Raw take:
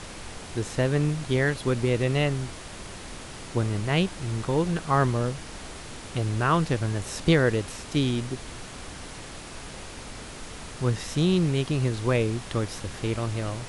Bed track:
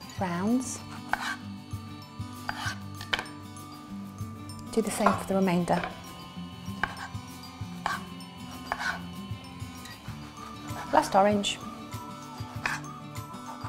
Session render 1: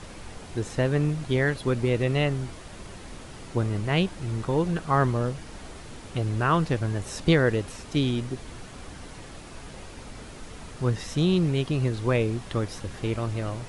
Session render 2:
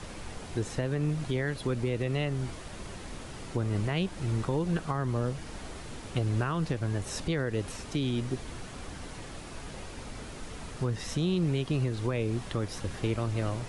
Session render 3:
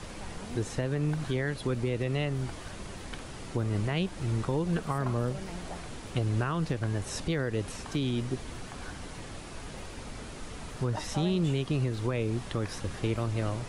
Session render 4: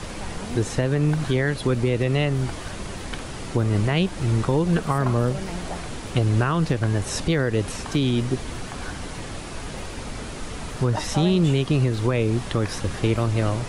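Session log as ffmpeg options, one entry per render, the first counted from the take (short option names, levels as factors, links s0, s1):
-af "afftdn=nr=6:nf=-41"
-filter_complex "[0:a]alimiter=limit=0.106:level=0:latency=1:release=211,acrossover=split=320|3000[s0][s1][s2];[s1]acompressor=threshold=0.0316:ratio=6[s3];[s0][s3][s2]amix=inputs=3:normalize=0"
-filter_complex "[1:a]volume=0.133[s0];[0:a][s0]amix=inputs=2:normalize=0"
-af "volume=2.66"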